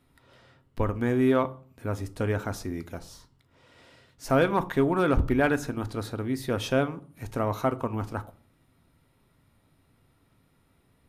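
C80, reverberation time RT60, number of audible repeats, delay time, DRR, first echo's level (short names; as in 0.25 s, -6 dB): 24.5 dB, 0.50 s, none, none, 10.0 dB, none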